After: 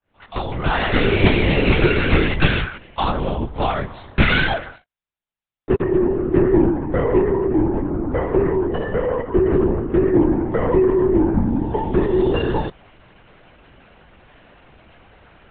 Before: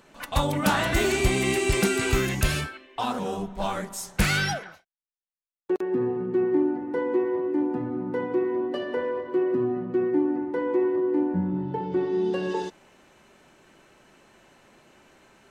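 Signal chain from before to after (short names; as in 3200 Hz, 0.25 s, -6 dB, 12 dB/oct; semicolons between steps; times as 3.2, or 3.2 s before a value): opening faded in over 1.19 s; 7.31–9.46 air absorption 240 m; LPC vocoder at 8 kHz whisper; gain +8 dB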